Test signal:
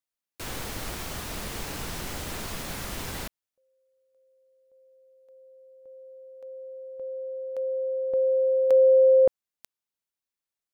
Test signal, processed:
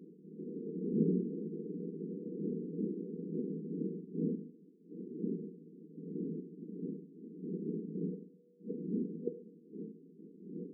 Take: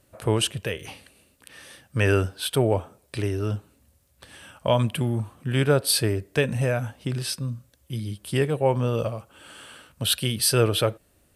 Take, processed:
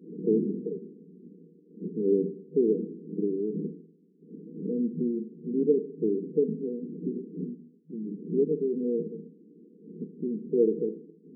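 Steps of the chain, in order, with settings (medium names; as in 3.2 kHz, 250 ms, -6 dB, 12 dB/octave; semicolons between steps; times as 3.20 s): wind noise 280 Hz -38 dBFS; Schroeder reverb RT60 0.68 s, combs from 33 ms, DRR 9.5 dB; FFT band-pass 160–490 Hz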